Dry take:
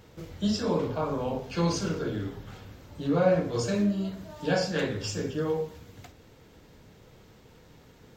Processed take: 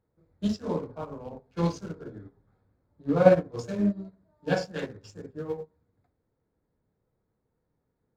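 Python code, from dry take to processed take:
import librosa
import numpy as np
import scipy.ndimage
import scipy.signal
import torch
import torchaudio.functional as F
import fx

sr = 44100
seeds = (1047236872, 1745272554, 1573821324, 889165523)

y = fx.wiener(x, sr, points=15)
y = fx.upward_expand(y, sr, threshold_db=-39.0, expansion=2.5)
y = y * librosa.db_to_amplitude(7.5)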